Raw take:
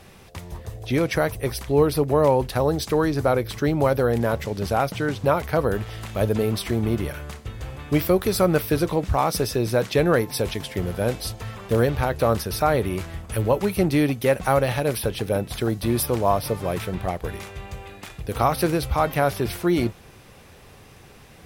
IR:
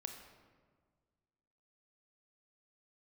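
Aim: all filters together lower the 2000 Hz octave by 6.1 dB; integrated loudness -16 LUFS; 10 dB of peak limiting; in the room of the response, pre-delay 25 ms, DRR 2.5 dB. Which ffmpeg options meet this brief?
-filter_complex "[0:a]equalizer=f=2k:t=o:g=-8.5,alimiter=limit=-17.5dB:level=0:latency=1,asplit=2[a][b];[1:a]atrim=start_sample=2205,adelay=25[c];[b][c]afir=irnorm=-1:irlink=0,volume=0.5dB[d];[a][d]amix=inputs=2:normalize=0,volume=10dB"

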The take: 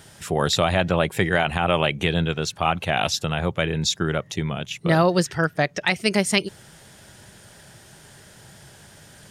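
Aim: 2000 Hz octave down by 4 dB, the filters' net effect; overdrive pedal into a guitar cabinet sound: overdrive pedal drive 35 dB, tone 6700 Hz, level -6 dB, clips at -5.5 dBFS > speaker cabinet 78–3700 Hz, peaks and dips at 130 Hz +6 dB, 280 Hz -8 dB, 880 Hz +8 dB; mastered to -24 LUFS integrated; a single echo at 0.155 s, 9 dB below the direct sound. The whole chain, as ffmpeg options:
-filter_complex "[0:a]equalizer=f=2k:t=o:g=-5.5,aecho=1:1:155:0.355,asplit=2[a][b];[b]highpass=f=720:p=1,volume=35dB,asoftclip=type=tanh:threshold=-5.5dB[c];[a][c]amix=inputs=2:normalize=0,lowpass=f=6.7k:p=1,volume=-6dB,highpass=78,equalizer=f=130:t=q:w=4:g=6,equalizer=f=280:t=q:w=4:g=-8,equalizer=f=880:t=q:w=4:g=8,lowpass=f=3.7k:w=0.5412,lowpass=f=3.7k:w=1.3066,volume=-11.5dB"

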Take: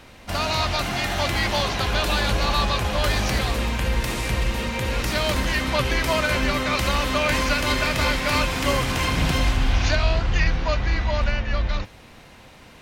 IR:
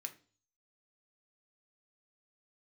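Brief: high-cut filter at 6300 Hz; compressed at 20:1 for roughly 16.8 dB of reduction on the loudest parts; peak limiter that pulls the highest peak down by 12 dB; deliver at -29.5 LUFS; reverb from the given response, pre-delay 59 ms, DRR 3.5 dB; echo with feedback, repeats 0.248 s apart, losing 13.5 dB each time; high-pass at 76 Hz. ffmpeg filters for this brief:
-filter_complex "[0:a]highpass=76,lowpass=6.3k,acompressor=threshold=-35dB:ratio=20,alimiter=level_in=11.5dB:limit=-24dB:level=0:latency=1,volume=-11.5dB,aecho=1:1:248|496:0.211|0.0444,asplit=2[a][b];[1:a]atrim=start_sample=2205,adelay=59[c];[b][c]afir=irnorm=-1:irlink=0,volume=-0.5dB[d];[a][d]amix=inputs=2:normalize=0,volume=13dB"

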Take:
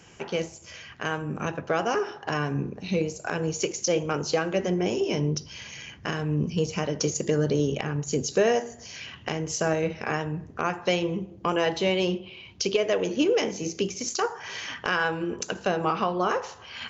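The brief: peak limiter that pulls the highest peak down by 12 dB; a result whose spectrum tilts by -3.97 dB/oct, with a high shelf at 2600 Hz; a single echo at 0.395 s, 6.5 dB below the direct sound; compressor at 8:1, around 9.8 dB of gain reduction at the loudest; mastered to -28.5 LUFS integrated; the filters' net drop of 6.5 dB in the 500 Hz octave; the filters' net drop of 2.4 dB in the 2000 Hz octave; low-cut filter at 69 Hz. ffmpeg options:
-af "highpass=69,equalizer=f=500:t=o:g=-8,equalizer=f=2k:t=o:g=-4,highshelf=f=2.6k:g=3,acompressor=threshold=-32dB:ratio=8,alimiter=level_in=4.5dB:limit=-24dB:level=0:latency=1,volume=-4.5dB,aecho=1:1:395:0.473,volume=10dB"

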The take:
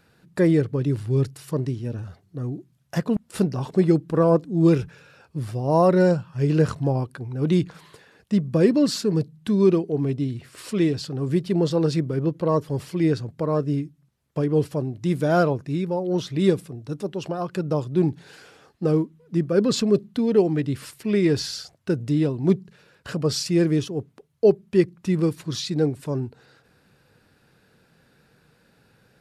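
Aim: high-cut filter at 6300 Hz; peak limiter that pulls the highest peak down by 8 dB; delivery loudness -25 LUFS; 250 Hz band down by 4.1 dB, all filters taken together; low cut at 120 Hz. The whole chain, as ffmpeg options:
-af "highpass=120,lowpass=6.3k,equalizer=f=250:t=o:g=-6,volume=3dB,alimiter=limit=-13dB:level=0:latency=1"

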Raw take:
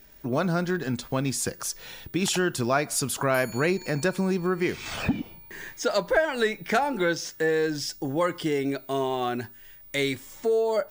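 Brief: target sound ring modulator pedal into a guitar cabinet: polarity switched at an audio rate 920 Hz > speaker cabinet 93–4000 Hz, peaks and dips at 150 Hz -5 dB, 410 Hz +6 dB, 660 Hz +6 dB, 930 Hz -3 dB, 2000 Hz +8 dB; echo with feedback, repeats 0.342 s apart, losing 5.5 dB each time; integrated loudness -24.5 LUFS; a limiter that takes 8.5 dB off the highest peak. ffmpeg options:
-af "alimiter=limit=-18.5dB:level=0:latency=1,aecho=1:1:342|684|1026|1368|1710|2052|2394:0.531|0.281|0.149|0.079|0.0419|0.0222|0.0118,aeval=exprs='val(0)*sgn(sin(2*PI*920*n/s))':c=same,highpass=93,equalizer=f=150:t=q:w=4:g=-5,equalizer=f=410:t=q:w=4:g=6,equalizer=f=660:t=q:w=4:g=6,equalizer=f=930:t=q:w=4:g=-3,equalizer=f=2k:t=q:w=4:g=8,lowpass=f=4k:w=0.5412,lowpass=f=4k:w=1.3066,volume=1dB"

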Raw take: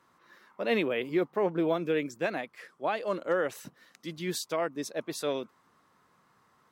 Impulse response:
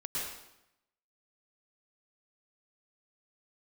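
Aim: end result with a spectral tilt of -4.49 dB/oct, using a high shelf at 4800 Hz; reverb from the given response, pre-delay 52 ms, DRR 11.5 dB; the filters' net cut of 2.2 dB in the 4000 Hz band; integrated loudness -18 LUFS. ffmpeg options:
-filter_complex "[0:a]equalizer=f=4k:t=o:g=-5.5,highshelf=f=4.8k:g=5.5,asplit=2[a][b];[1:a]atrim=start_sample=2205,adelay=52[c];[b][c]afir=irnorm=-1:irlink=0,volume=-15dB[d];[a][d]amix=inputs=2:normalize=0,volume=13dB"

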